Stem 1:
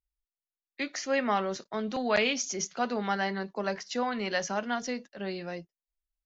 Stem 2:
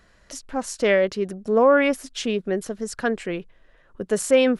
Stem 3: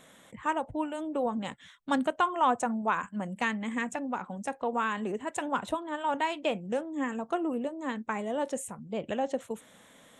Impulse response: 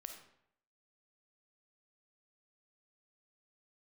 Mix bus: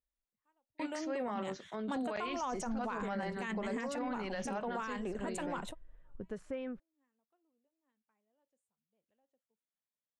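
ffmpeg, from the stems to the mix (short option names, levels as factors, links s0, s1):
-filter_complex "[0:a]highshelf=f=2500:g=-8.5,volume=0.501,asplit=2[s0][s1];[1:a]aemphasis=mode=reproduction:type=riaa,acrossover=split=1000|2600[s2][s3][s4];[s2]acompressor=threshold=0.0708:ratio=4[s5];[s3]acompressor=threshold=0.0178:ratio=4[s6];[s4]acompressor=threshold=0.00316:ratio=4[s7];[s5][s6][s7]amix=inputs=3:normalize=0,adelay=2200,volume=0.141[s8];[2:a]volume=0.596[s9];[s1]apad=whole_len=449637[s10];[s9][s10]sidechaingate=range=0.00562:threshold=0.00126:ratio=16:detection=peak[s11];[s0][s8][s11]amix=inputs=3:normalize=0,alimiter=level_in=1.88:limit=0.0631:level=0:latency=1:release=13,volume=0.531"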